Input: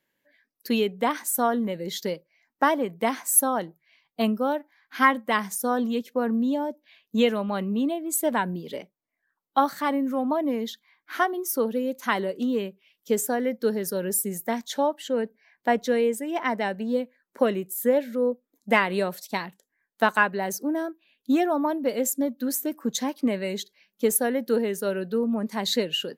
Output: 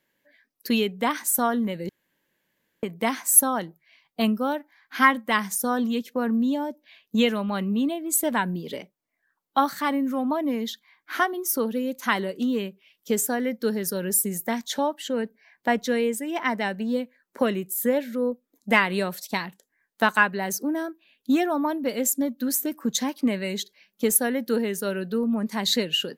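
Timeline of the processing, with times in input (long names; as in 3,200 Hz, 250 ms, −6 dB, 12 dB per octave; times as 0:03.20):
0:01.89–0:02.83: fill with room tone
whole clip: dynamic equaliser 550 Hz, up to −6 dB, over −36 dBFS, Q 0.74; level +3.5 dB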